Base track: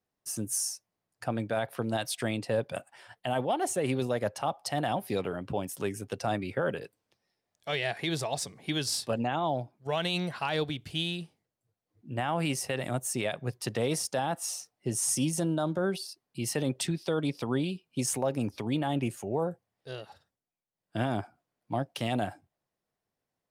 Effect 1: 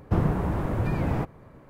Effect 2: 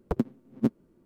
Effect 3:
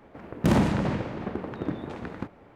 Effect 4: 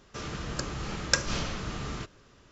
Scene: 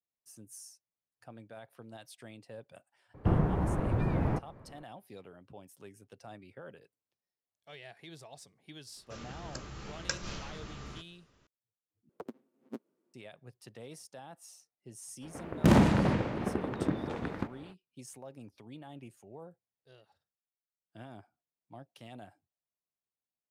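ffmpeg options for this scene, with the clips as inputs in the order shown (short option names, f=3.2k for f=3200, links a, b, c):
-filter_complex "[0:a]volume=-18.5dB[a];[1:a]lowpass=f=2.3k:p=1[b];[4:a]asplit=2[c][d];[d]adelay=15,volume=-13.5dB[e];[c][e]amix=inputs=2:normalize=0[f];[2:a]highpass=360[g];[a]asplit=2[h][i];[h]atrim=end=12.094[j];[g]atrim=end=1.05,asetpts=PTS-STARTPTS,volume=-11.5dB[k];[i]atrim=start=13.136[l];[b]atrim=end=1.69,asetpts=PTS-STARTPTS,volume=-3.5dB,afade=t=in:d=0.004:c=hsin,afade=t=out:st=1.686:d=0.004:c=hsin,adelay=3140[m];[f]atrim=end=2.51,asetpts=PTS-STARTPTS,volume=-10dB,afade=t=in:d=0.004:c=hsin,afade=t=out:st=2.506:d=0.004:c=hsin,adelay=8960[n];[3:a]atrim=end=2.55,asetpts=PTS-STARTPTS,volume=-0.5dB,afade=t=in:d=0.05,afade=t=out:st=2.5:d=0.05,adelay=15200[o];[j][k]acrossfade=d=0.004:c1=hsin:c2=hsin[p];[p][l]acrossfade=d=0.004:c1=hsin:c2=hsin[q];[q][m][n][o]amix=inputs=4:normalize=0"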